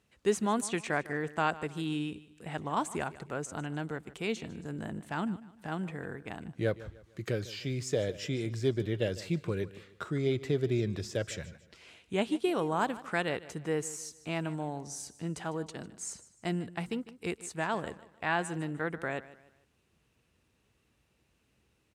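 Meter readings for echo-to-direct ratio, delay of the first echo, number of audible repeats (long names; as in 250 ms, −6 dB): −17.0 dB, 151 ms, 2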